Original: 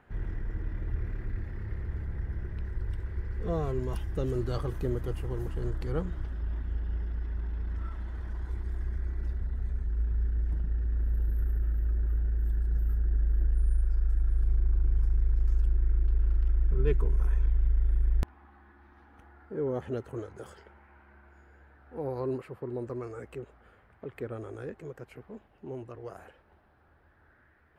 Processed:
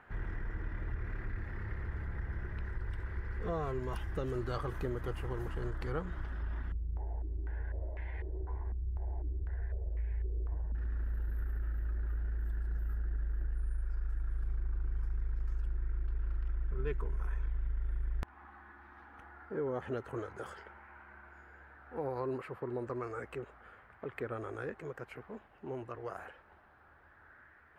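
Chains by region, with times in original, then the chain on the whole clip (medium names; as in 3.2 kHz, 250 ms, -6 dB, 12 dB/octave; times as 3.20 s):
6.72–10.75 s: static phaser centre 530 Hz, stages 4 + doubling 13 ms -4.5 dB + step-sequenced low-pass 4 Hz 210–2200 Hz
whole clip: peaking EQ 1.4 kHz +10 dB 2.2 oct; compression 2.5:1, threshold -30 dBFS; trim -3.5 dB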